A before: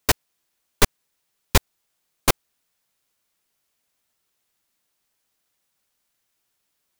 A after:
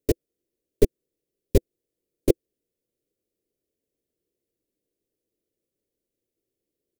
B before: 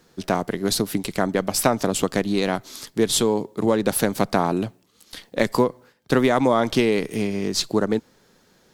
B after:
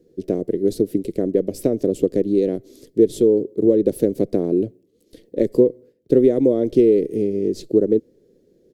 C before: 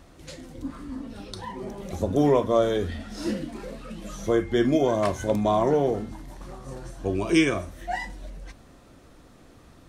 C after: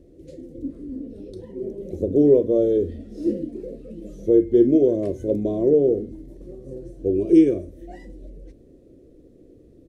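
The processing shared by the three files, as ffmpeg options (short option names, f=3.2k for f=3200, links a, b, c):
-af "firequalizer=gain_entry='entry(210,0);entry(340,10);entry(490,7);entry(830,-23);entry(1300,-26);entry(1900,-17);entry(11000,-12)':delay=0.05:min_phase=1,volume=-1.5dB"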